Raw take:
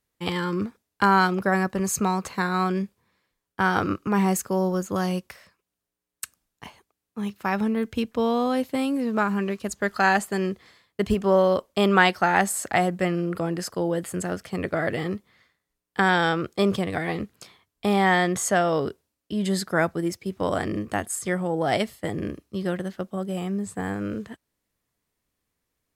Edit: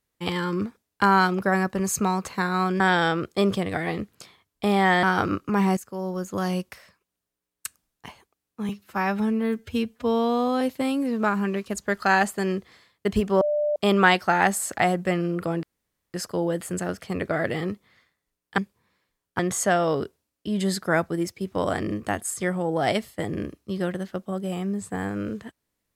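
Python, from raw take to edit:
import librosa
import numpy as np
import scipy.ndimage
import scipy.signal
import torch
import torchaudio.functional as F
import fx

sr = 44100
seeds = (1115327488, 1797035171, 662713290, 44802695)

y = fx.edit(x, sr, fx.swap(start_s=2.8, length_s=0.81, other_s=16.01, other_length_s=2.23),
    fx.fade_in_from(start_s=4.35, length_s=0.78, floor_db=-14.5),
    fx.stretch_span(start_s=7.27, length_s=1.28, factor=1.5),
    fx.bleep(start_s=11.35, length_s=0.35, hz=594.0, db=-20.5),
    fx.insert_room_tone(at_s=13.57, length_s=0.51), tone=tone)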